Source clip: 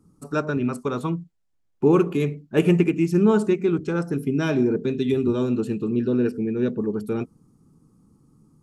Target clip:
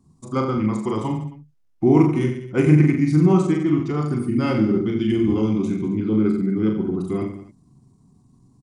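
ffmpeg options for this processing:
-af "aecho=1:1:40|86|138.9|199.7|269.7:0.631|0.398|0.251|0.158|0.1,asetrate=38170,aresample=44100,atempo=1.15535"

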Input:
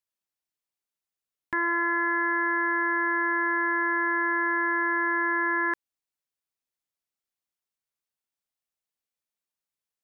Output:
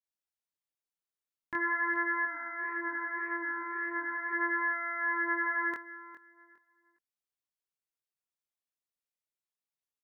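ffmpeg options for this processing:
-filter_complex "[0:a]asettb=1/sr,asplit=3[a][b][c];[a]atrim=end=2.254[d];[b]atrim=start=2.25:end=4.33,asetpts=PTS-STARTPTS,afade=t=in:d=0.004:c=qsin,afade=t=out:st=2.076:d=0.004:c=qsin,flanger=delay=8.6:depth=3.6:regen=84:speed=1.8:shape=sinusoidal[e];[c]atrim=start=4.326[f];[d][e]acrossfade=d=0.004:c1=hsin:c2=qsin[g];[g][f]acrossfade=d=0.004:c1=qsin:c2=hsin,aecho=1:1:409|818|1227:0.188|0.0452|0.0108,flanger=delay=19:depth=5.3:speed=0.41,adynamicequalizer=threshold=0.0112:dfrequency=1600:dqfactor=0.7:tfrequency=1600:tqfactor=0.7:attack=5:release=100:ratio=0.375:range=2.5:mode=boostabove:tftype=highshelf,volume=-4dB"

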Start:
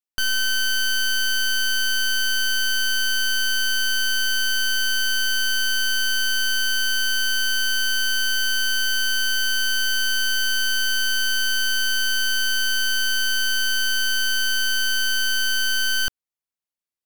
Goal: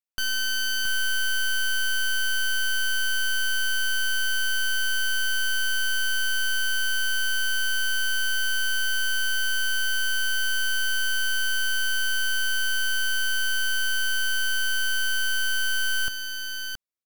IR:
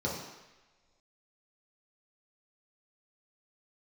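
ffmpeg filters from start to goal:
-af "aecho=1:1:672:0.473,volume=-4.5dB"

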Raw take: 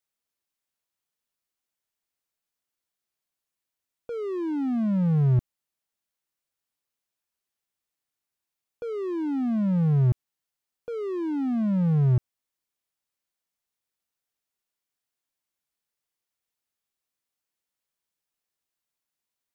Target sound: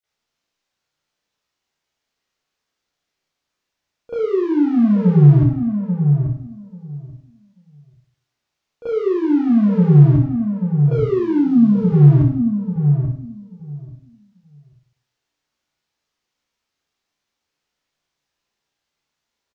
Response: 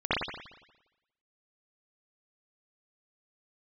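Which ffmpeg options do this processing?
-filter_complex "[0:a]asplit=2[a][b];[b]asoftclip=type=tanh:threshold=-27.5dB,volume=-5dB[c];[a][c]amix=inputs=2:normalize=0,asettb=1/sr,asplit=3[d][e][f];[d]atrim=end=11.364[g];[e]atrim=start=11.36:end=11.89,asetpts=PTS-STARTPTS,afade=t=in:d=0.004:c=qsin,afade=t=out:st=0.526:d=0.004:c=qsin,equalizer=f=125:t=o:w=1:g=-12,equalizer=f=250:t=o:w=1:g=8,equalizer=f=500:t=o:w=1:g=-12,equalizer=f=2k:t=o:w=1:g=-11[h];[f]atrim=start=11.886[i];[g][h]acrossfade=d=0.004:c1=hsin:c2=qsin[j];[j][i]acrossfade=d=0.004:c1=qsin:c2=hsin,asplit=2[k][l];[l]adelay=837,lowpass=f=890:p=1,volume=-6dB,asplit=2[m][n];[n]adelay=837,lowpass=f=890:p=1,volume=0.16,asplit=2[o][p];[p]adelay=837,lowpass=f=890:p=1,volume=0.16[q];[k][m][o][q]amix=inputs=4:normalize=0[r];[1:a]atrim=start_sample=2205,asetrate=74970,aresample=44100[s];[r][s]afir=irnorm=-1:irlink=0,volume=-1dB"

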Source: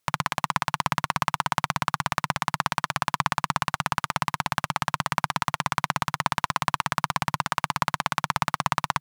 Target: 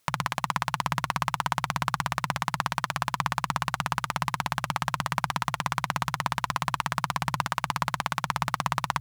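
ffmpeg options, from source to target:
-af "bandreject=f=60:t=h:w=6,bandreject=f=120:t=h:w=6,alimiter=level_in=14dB:limit=-1dB:release=50:level=0:latency=1,volume=-6dB"

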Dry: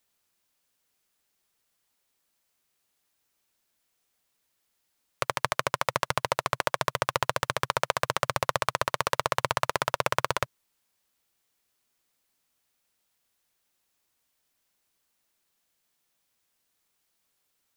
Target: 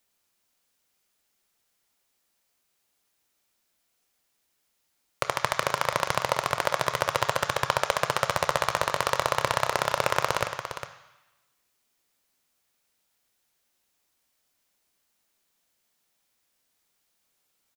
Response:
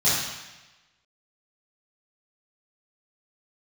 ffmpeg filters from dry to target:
-filter_complex "[0:a]aecho=1:1:406:0.335,asplit=2[a][b];[1:a]atrim=start_sample=2205,lowpass=7.7k,lowshelf=f=280:g=-11.5[c];[b][c]afir=irnorm=-1:irlink=0,volume=-23dB[d];[a][d]amix=inputs=2:normalize=0,volume=1dB"

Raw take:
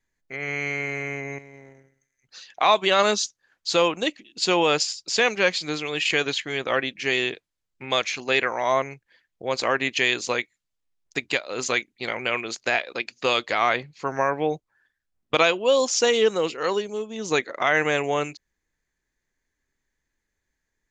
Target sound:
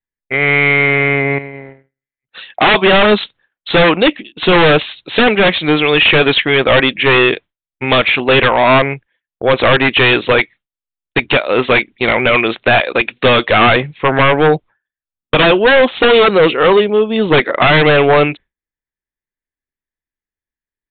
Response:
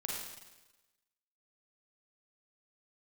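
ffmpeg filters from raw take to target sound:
-af "agate=range=-33dB:threshold=-41dB:ratio=3:detection=peak,aeval=exprs='0.596*sin(PI/2*5.62*val(0)/0.596)':c=same,aresample=8000,aresample=44100"

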